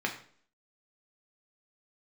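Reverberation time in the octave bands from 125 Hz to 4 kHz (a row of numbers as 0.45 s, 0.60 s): 0.50 s, 0.60 s, 0.55 s, 0.50 s, 0.45 s, 0.45 s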